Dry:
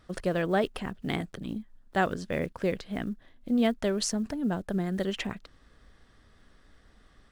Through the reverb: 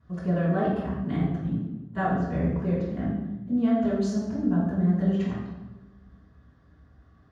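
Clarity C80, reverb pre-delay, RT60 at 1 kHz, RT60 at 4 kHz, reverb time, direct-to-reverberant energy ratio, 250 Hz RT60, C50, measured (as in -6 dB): 3.0 dB, 3 ms, 0.95 s, 0.75 s, 1.1 s, -14.5 dB, 1.5 s, 0.0 dB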